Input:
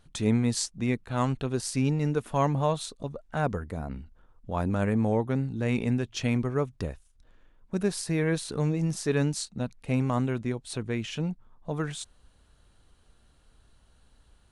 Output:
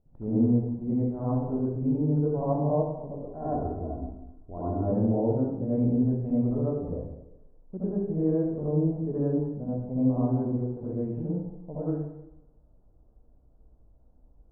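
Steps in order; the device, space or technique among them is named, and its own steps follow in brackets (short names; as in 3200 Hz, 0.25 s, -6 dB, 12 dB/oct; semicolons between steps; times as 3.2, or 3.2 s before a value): next room (LPF 700 Hz 24 dB/oct; reverb RT60 0.95 s, pre-delay 61 ms, DRR -10 dB); 3.27–4.92 comb 2.9 ms, depth 60%; gain -8 dB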